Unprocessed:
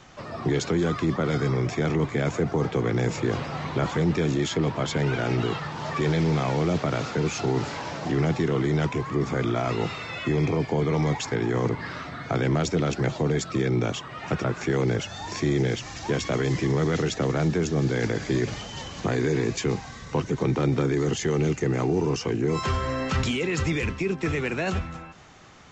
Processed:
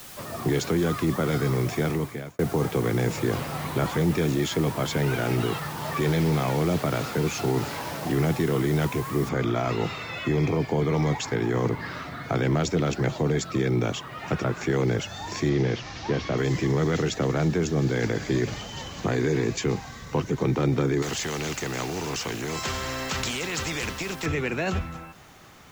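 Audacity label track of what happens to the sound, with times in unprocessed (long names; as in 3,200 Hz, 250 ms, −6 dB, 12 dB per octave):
1.810000	2.390000	fade out
9.290000	9.290000	noise floor change −44 dB −62 dB
15.490000	16.380000	linear delta modulator 32 kbit/s, step −38.5 dBFS
21.020000	24.260000	every bin compressed towards the loudest bin 2 to 1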